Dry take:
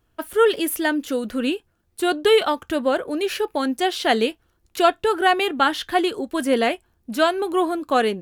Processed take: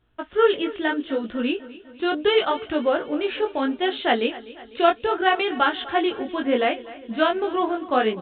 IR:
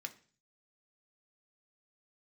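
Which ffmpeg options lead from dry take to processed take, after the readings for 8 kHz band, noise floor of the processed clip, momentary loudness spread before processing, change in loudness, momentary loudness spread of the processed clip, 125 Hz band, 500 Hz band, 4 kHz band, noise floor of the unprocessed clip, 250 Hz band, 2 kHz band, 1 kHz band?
under -40 dB, -47 dBFS, 7 LU, -2.0 dB, 7 LU, n/a, -1.5 dB, -2.0 dB, -67 dBFS, -1.5 dB, -1.5 dB, -1.5 dB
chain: -af "flanger=delay=16.5:depth=6.9:speed=0.72,aecho=1:1:250|500|750|1000|1250:0.126|0.0718|0.0409|0.0233|0.0133,volume=1.5dB" -ar 8000 -c:a pcm_mulaw

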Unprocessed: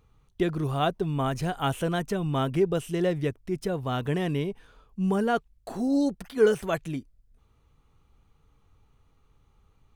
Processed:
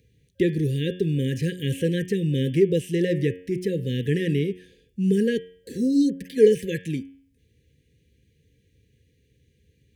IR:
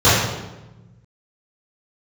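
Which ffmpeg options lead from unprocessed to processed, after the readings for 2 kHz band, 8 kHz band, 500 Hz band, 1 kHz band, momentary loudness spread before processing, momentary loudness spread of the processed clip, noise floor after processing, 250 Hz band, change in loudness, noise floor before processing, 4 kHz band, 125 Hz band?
+0.5 dB, +2.0 dB, +4.0 dB, under -40 dB, 8 LU, 10 LU, -66 dBFS, +4.5 dB, +4.0 dB, -65 dBFS, +2.0 dB, +5.0 dB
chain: -filter_complex "[0:a]afftfilt=real='re*(1-between(b*sr/4096,540,1600))':imag='im*(1-between(b*sr/4096,540,1600))':win_size=4096:overlap=0.75,highpass=f=68:w=0.5412,highpass=f=68:w=1.3066,bandreject=f=90.98:t=h:w=4,bandreject=f=181.96:t=h:w=4,bandreject=f=272.94:t=h:w=4,bandreject=f=363.92:t=h:w=4,bandreject=f=454.9:t=h:w=4,bandreject=f=545.88:t=h:w=4,bandreject=f=636.86:t=h:w=4,bandreject=f=727.84:t=h:w=4,bandreject=f=818.82:t=h:w=4,bandreject=f=909.8:t=h:w=4,bandreject=f=1.00078k:t=h:w=4,bandreject=f=1.09176k:t=h:w=4,bandreject=f=1.18274k:t=h:w=4,bandreject=f=1.27372k:t=h:w=4,bandreject=f=1.3647k:t=h:w=4,bandreject=f=1.45568k:t=h:w=4,bandreject=f=1.54666k:t=h:w=4,bandreject=f=1.63764k:t=h:w=4,bandreject=f=1.72862k:t=h:w=4,bandreject=f=1.8196k:t=h:w=4,bandreject=f=1.91058k:t=h:w=4,bandreject=f=2.00156k:t=h:w=4,bandreject=f=2.09254k:t=h:w=4,bandreject=f=2.18352k:t=h:w=4,bandreject=f=2.2745k:t=h:w=4,bandreject=f=2.36548k:t=h:w=4,bandreject=f=2.45646k:t=h:w=4,bandreject=f=2.54744k:t=h:w=4,bandreject=f=2.63842k:t=h:w=4,bandreject=f=2.7294k:t=h:w=4,bandreject=f=2.82038k:t=h:w=4,bandreject=f=2.91136k:t=h:w=4,bandreject=f=3.00234k:t=h:w=4,bandreject=f=3.09332k:t=h:w=4,bandreject=f=3.1843k:t=h:w=4,bandreject=f=3.27528k:t=h:w=4,bandreject=f=3.36626k:t=h:w=4,bandreject=f=3.45724k:t=h:w=4,bandreject=f=3.54822k:t=h:w=4,acrossover=split=630|2500[a][b][c];[c]alimiter=level_in=13.5dB:limit=-24dB:level=0:latency=1:release=44,volume=-13.5dB[d];[a][b][d]amix=inputs=3:normalize=0,volume=5dB"

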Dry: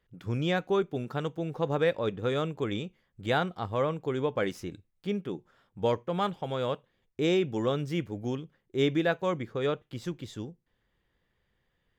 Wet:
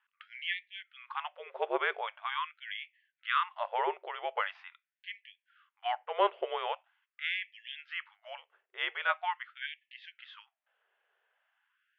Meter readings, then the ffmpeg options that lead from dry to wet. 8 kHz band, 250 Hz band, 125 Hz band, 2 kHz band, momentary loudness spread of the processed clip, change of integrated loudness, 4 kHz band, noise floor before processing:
n/a, under -20 dB, under -40 dB, +2.0 dB, 18 LU, -4.5 dB, -1.0 dB, -76 dBFS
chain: -af "highpass=f=190:t=q:w=0.5412,highpass=f=190:t=q:w=1.307,lowpass=f=3.3k:t=q:w=0.5176,lowpass=f=3.3k:t=q:w=0.7071,lowpass=f=3.3k:t=q:w=1.932,afreqshift=-220,afftfilt=real='re*gte(b*sr/1024,350*pow(1700/350,0.5+0.5*sin(2*PI*0.43*pts/sr)))':imag='im*gte(b*sr/1024,350*pow(1700/350,0.5+0.5*sin(2*PI*0.43*pts/sr)))':win_size=1024:overlap=0.75,volume=4dB"

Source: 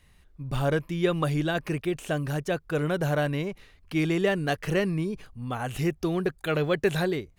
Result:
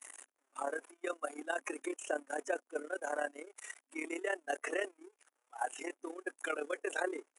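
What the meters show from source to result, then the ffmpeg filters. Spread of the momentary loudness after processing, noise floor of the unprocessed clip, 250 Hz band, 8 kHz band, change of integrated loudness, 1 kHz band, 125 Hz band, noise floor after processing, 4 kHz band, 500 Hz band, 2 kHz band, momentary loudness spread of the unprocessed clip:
9 LU, -59 dBFS, -17.5 dB, -2.0 dB, -12.0 dB, -6.5 dB, under -40 dB, -84 dBFS, -15.5 dB, -11.0 dB, -7.0 dB, 8 LU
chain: -filter_complex "[0:a]aeval=exprs='val(0)+0.5*0.0422*sgn(val(0))':c=same,aexciter=amount=5.3:drive=9.4:freq=6.1k,agate=range=-23dB:threshold=-20dB:ratio=16:detection=peak,afftdn=nr=15:nf=-30,acrossover=split=7900[a][b];[b]acompressor=threshold=-31dB:ratio=4:attack=1:release=60[c];[a][c]amix=inputs=2:normalize=0,afftfilt=real='re*between(b*sr/4096,260,11000)':imag='im*between(b*sr/4096,260,11000)':win_size=4096:overlap=0.75,alimiter=limit=-21dB:level=0:latency=1:release=32,acrossover=split=350|4800[d][e][f];[e]acompressor=threshold=-30dB:ratio=4[g];[f]acompressor=threshold=-35dB:ratio=4[h];[d][g][h]amix=inputs=3:normalize=0,aphaser=in_gain=1:out_gain=1:delay=1.4:decay=0.2:speed=0.41:type=sinusoidal,acrossover=split=570 2800:gain=0.178 1 0.178[i][j][k];[i][j][k]amix=inputs=3:normalize=0,tremolo=f=35:d=0.75,volume=4dB"

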